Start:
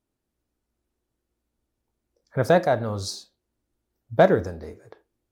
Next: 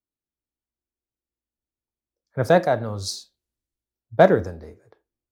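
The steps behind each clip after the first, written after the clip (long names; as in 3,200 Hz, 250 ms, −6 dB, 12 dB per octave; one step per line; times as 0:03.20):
multiband upward and downward expander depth 40%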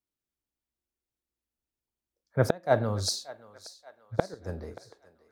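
gate with flip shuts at −7 dBFS, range −29 dB
feedback echo with a high-pass in the loop 580 ms, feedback 55%, high-pass 600 Hz, level −17 dB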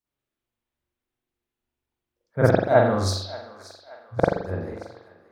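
convolution reverb RT60 0.65 s, pre-delay 42 ms, DRR −9 dB
level −1.5 dB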